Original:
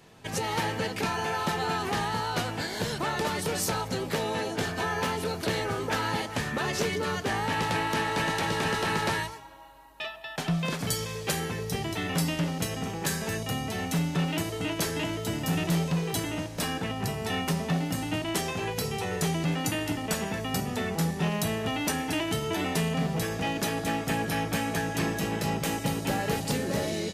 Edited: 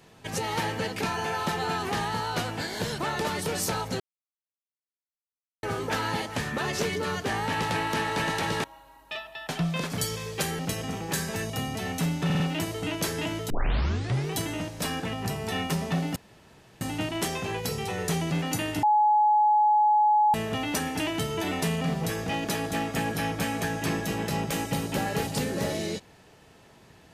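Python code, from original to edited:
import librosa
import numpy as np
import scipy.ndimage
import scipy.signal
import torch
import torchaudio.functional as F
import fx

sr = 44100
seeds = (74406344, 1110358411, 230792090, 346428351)

y = fx.edit(x, sr, fx.silence(start_s=4.0, length_s=1.63),
    fx.cut(start_s=8.64, length_s=0.89),
    fx.cut(start_s=11.48, length_s=1.04),
    fx.stutter(start_s=14.18, slice_s=0.05, count=4),
    fx.tape_start(start_s=15.28, length_s=0.84),
    fx.insert_room_tone(at_s=17.94, length_s=0.65),
    fx.bleep(start_s=19.96, length_s=1.51, hz=845.0, db=-17.5), tone=tone)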